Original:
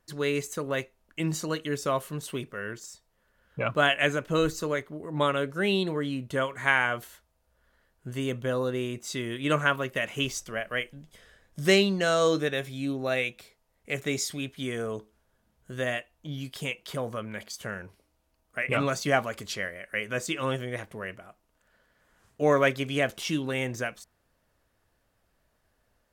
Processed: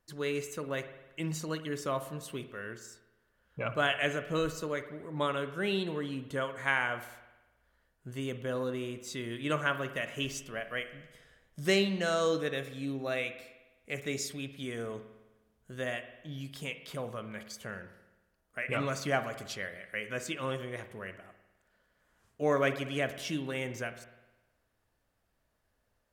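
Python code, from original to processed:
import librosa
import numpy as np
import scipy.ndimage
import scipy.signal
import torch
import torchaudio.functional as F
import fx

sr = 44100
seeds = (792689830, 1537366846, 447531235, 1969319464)

y = fx.rev_spring(x, sr, rt60_s=1.1, pass_ms=(51,), chirp_ms=75, drr_db=11.0)
y = F.gain(torch.from_numpy(y), -6.0).numpy()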